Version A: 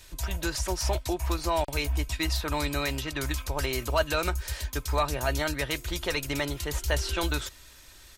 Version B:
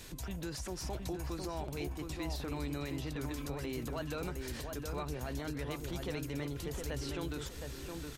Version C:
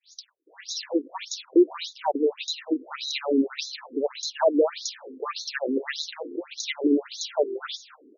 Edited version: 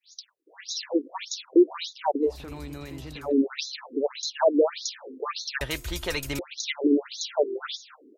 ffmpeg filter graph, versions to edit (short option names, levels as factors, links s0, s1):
-filter_complex "[2:a]asplit=3[s0][s1][s2];[s0]atrim=end=2.45[s3];[1:a]atrim=start=2.21:end=3.35[s4];[s1]atrim=start=3.11:end=5.612[s5];[0:a]atrim=start=5.608:end=6.392[s6];[s2]atrim=start=6.388[s7];[s3][s4]acrossfade=d=0.24:c1=tri:c2=tri[s8];[s8][s5]acrossfade=d=0.24:c1=tri:c2=tri[s9];[s9][s6]acrossfade=d=0.004:c1=hsin:c2=hsin[s10];[s10][s7]acrossfade=d=0.004:c1=hsin:c2=hsin"